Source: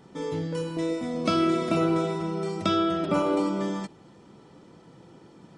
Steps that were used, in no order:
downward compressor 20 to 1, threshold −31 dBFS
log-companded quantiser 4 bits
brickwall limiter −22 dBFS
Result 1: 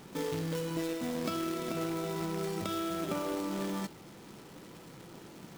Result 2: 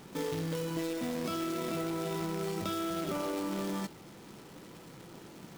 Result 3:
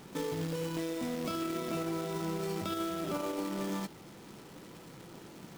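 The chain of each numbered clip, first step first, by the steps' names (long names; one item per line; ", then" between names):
downward compressor, then log-companded quantiser, then brickwall limiter
brickwall limiter, then downward compressor, then log-companded quantiser
log-companded quantiser, then brickwall limiter, then downward compressor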